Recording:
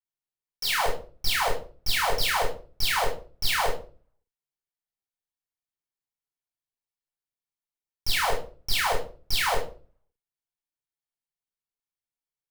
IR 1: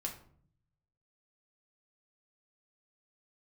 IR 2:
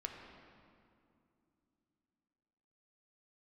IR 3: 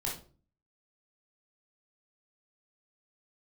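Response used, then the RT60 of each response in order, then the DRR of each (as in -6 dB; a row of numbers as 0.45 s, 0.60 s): 3; 0.55 s, 2.6 s, 0.40 s; 0.0 dB, 2.0 dB, -3.5 dB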